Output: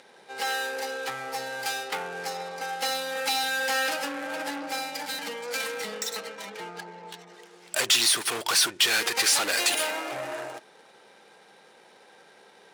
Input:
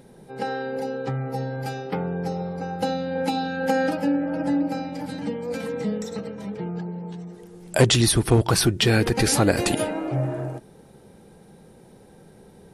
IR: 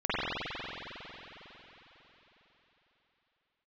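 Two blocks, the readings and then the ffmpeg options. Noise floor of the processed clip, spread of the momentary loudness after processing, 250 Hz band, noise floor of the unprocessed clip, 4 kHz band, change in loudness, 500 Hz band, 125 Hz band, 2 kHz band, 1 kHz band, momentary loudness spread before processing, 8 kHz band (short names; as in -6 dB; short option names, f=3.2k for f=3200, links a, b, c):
-55 dBFS, 17 LU, -17.5 dB, -50 dBFS, +3.0 dB, -2.0 dB, -9.0 dB, -29.0 dB, +3.0 dB, -2.0 dB, 14 LU, +2.0 dB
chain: -filter_complex "[0:a]asplit=2[a][b];[b]highpass=f=720:p=1,volume=26dB,asoftclip=type=tanh:threshold=-4dB[c];[a][c]amix=inputs=2:normalize=0,lowpass=f=2.2k:p=1,volume=-6dB,adynamicsmooth=sensitivity=8:basefreq=2.8k,aderivative,volume=3.5dB"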